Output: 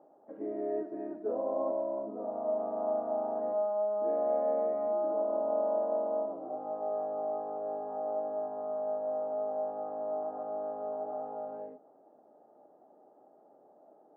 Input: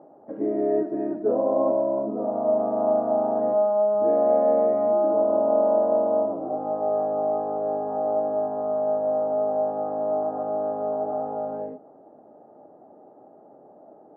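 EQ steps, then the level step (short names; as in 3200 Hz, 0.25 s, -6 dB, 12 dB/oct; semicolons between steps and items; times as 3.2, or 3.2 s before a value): HPF 370 Hz 6 dB/oct; -8.5 dB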